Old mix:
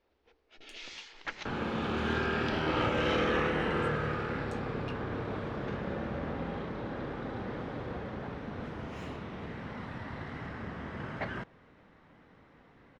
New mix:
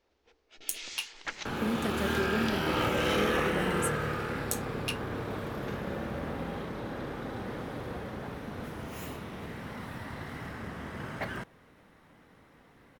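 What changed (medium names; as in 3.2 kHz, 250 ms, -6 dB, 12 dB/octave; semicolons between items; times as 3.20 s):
speech +12.0 dB; master: remove distance through air 140 m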